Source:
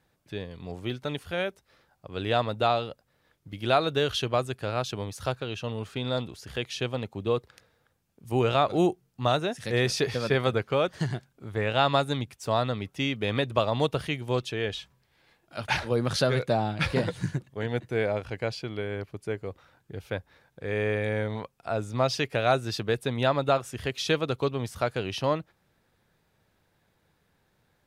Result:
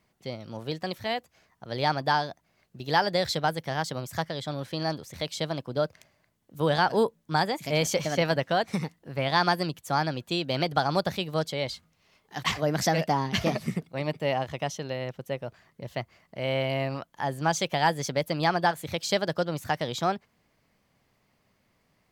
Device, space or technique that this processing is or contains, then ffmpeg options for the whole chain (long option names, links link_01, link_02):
nightcore: -af "asetrate=55566,aresample=44100"